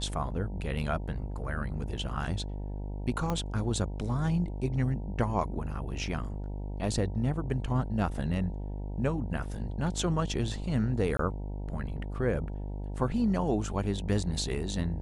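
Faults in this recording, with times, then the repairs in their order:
buzz 50 Hz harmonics 19 -36 dBFS
3.30 s: pop -18 dBFS
11.17–11.19 s: dropout 23 ms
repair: de-click; de-hum 50 Hz, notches 19; interpolate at 11.17 s, 23 ms

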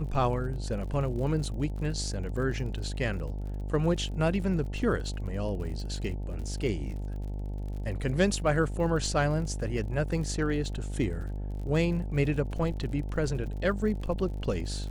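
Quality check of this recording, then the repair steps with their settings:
buzz 50 Hz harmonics 18 -34 dBFS
crackle 55 per s -39 dBFS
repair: de-click; de-hum 50 Hz, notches 18

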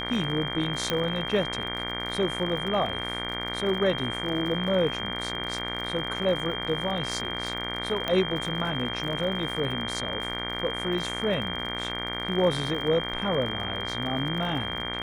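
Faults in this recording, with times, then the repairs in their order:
buzz 60 Hz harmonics 39 -35 dBFS
crackle 58 per s -35 dBFS
whine 3.2 kHz -33 dBFS
0.90 s: pop -11 dBFS
8.08 s: pop -14 dBFS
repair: de-click; de-hum 60 Hz, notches 39; band-stop 3.2 kHz, Q 30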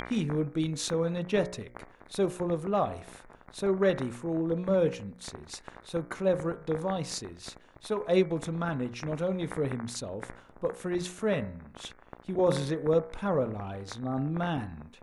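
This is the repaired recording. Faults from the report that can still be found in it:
0.90 s: pop

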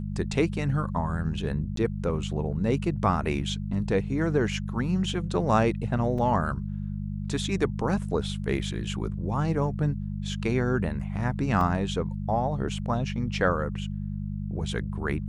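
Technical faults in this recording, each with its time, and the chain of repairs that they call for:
hum 50 Hz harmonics 4 -32 dBFS
1.76–1.77 s: dropout 13 ms
6.18 s: dropout 4.5 ms
11.61 s: dropout 2.4 ms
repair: de-hum 50 Hz, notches 4; interpolate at 1.76 s, 13 ms; interpolate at 6.18 s, 4.5 ms; interpolate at 11.61 s, 2.4 ms

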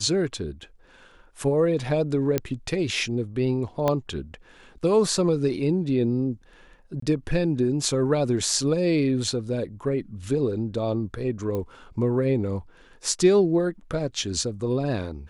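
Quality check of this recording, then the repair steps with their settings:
2.38 s: pop -9 dBFS
3.88 s: pop -10 dBFS
7.00–7.02 s: dropout 24 ms
11.55 s: pop -18 dBFS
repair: de-click; interpolate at 7.00 s, 24 ms

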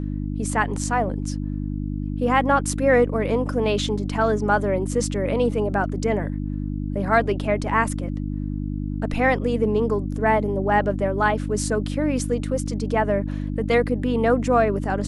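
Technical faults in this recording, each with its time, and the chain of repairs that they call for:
hum 50 Hz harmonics 6 -27 dBFS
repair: de-hum 50 Hz, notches 6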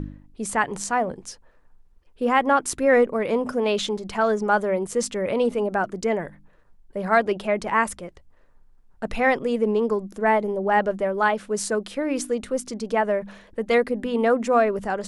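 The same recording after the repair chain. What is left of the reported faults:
nothing left

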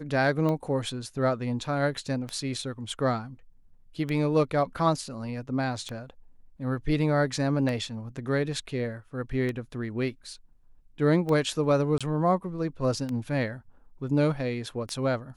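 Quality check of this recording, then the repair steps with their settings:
tick 33 1/3 rpm -19 dBFS
11.98–12.01 s: dropout 26 ms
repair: de-click; interpolate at 11.98 s, 26 ms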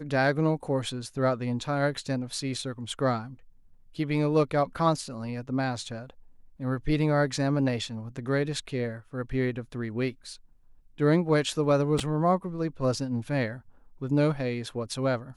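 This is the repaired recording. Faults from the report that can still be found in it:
nothing left

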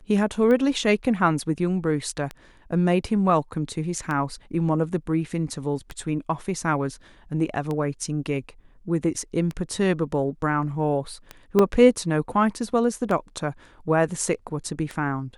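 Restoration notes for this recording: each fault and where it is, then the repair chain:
tick 33 1/3 rpm -17 dBFS
11.59 s: dropout 2.9 ms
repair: de-click; interpolate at 11.59 s, 2.9 ms

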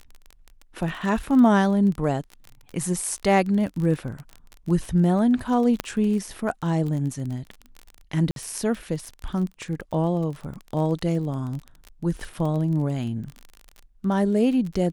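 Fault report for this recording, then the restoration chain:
crackle 28 per s -30 dBFS
5.80 s: pop -9 dBFS
8.31–8.36 s: dropout 52 ms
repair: de-click; interpolate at 8.31 s, 52 ms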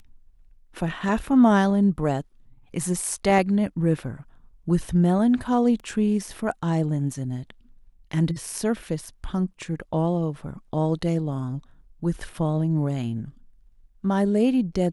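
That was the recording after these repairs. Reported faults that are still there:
5.80 s: pop

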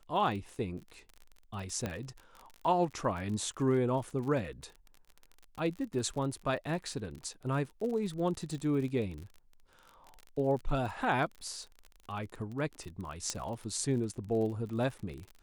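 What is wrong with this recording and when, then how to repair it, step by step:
crackle 39 per s -39 dBFS
1.86 s: pop -20 dBFS
13.30 s: pop -19 dBFS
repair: de-click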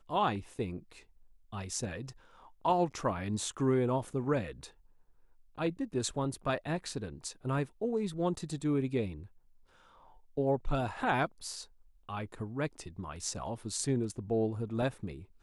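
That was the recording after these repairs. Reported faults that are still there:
nothing left

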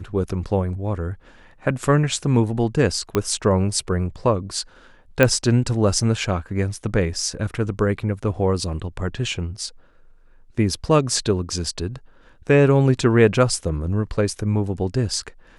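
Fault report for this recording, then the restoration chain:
3.15 s: pop -7 dBFS
5.23 s: pop -3 dBFS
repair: de-click

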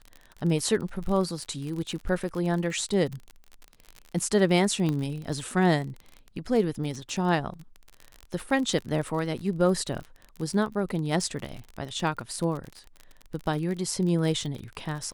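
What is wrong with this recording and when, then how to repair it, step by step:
crackle 39 per s -32 dBFS
4.89 s: pop -17 dBFS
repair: de-click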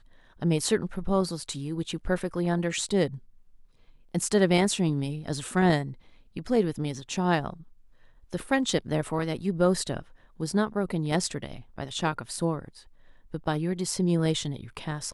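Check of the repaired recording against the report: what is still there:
nothing left

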